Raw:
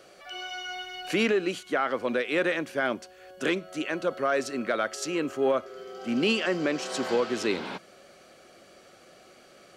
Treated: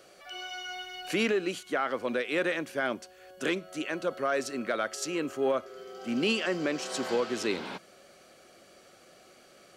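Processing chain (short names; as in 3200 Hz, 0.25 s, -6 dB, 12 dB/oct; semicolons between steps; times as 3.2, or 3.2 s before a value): high shelf 6900 Hz +5.5 dB; gain -3 dB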